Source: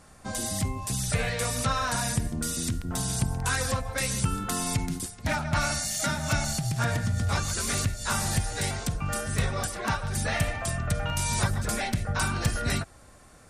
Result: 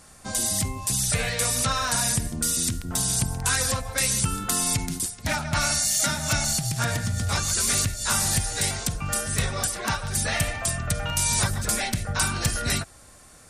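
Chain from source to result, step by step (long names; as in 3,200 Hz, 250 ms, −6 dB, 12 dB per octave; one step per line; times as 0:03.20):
high-shelf EQ 3,000 Hz +9 dB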